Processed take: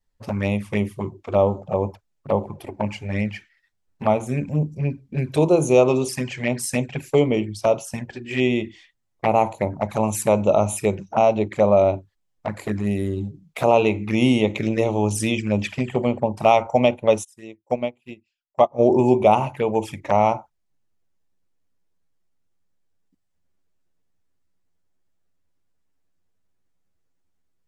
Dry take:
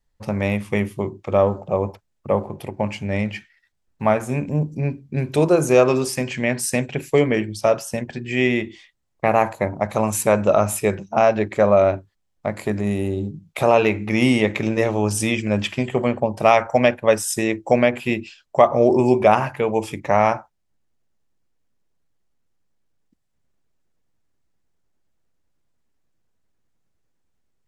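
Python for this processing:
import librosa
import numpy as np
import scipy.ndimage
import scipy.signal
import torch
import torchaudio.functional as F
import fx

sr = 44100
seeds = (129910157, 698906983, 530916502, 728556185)

y = fx.dynamic_eq(x, sr, hz=870.0, q=4.4, threshold_db=-34.0, ratio=4.0, max_db=5)
y = fx.env_flanger(y, sr, rest_ms=11.2, full_db=-16.5)
y = fx.upward_expand(y, sr, threshold_db=-31.0, expansion=2.5, at=(17.23, 18.78), fade=0.02)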